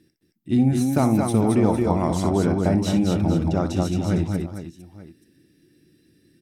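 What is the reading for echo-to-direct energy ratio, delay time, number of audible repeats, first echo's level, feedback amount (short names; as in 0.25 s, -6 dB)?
-2.0 dB, 61 ms, 4, -11.0 dB, no steady repeat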